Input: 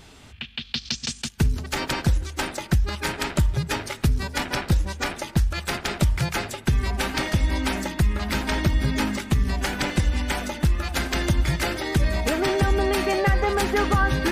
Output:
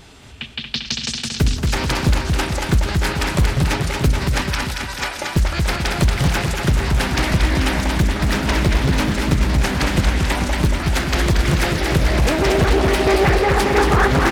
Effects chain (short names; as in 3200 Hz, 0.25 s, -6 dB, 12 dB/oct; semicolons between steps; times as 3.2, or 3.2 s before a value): 4.41–5.17 HPF 1400 Hz -> 520 Hz 12 dB/oct; bouncing-ball echo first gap 0.23 s, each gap 0.9×, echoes 5; on a send at -16.5 dB: reverb RT60 0.50 s, pre-delay 6 ms; on the sum: Doppler distortion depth 0.88 ms; gain +4 dB